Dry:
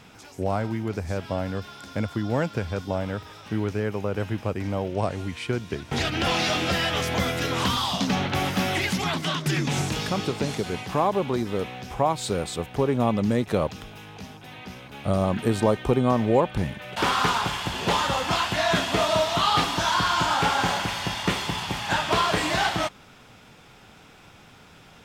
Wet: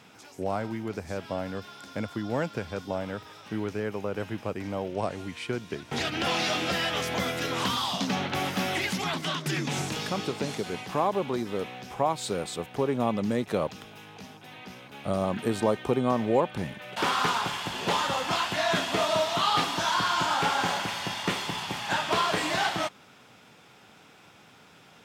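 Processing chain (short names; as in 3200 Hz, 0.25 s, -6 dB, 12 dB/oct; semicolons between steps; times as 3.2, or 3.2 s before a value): Bessel high-pass 160 Hz, order 2; gain -3 dB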